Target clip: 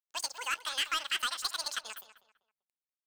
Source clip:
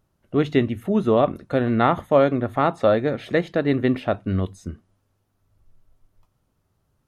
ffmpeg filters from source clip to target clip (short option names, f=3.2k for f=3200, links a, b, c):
-filter_complex "[0:a]highpass=1.3k,highshelf=f=4.5k:g=5.5,asplit=2[a][b];[b]acompressor=threshold=-46dB:ratio=6,volume=1dB[c];[a][c]amix=inputs=2:normalize=0,asoftclip=type=hard:threshold=-22dB,asetrate=101871,aresample=44100,aeval=exprs='sgn(val(0))*max(abs(val(0))-0.00168,0)':c=same,asplit=2[d][e];[e]adelay=195,lowpass=f=3.2k:p=1,volume=-12.5dB,asplit=2[f][g];[g]adelay=195,lowpass=f=3.2k:p=1,volume=0.3,asplit=2[h][i];[i]adelay=195,lowpass=f=3.2k:p=1,volume=0.3[j];[f][h][j]amix=inputs=3:normalize=0[k];[d][k]amix=inputs=2:normalize=0,volume=-2dB"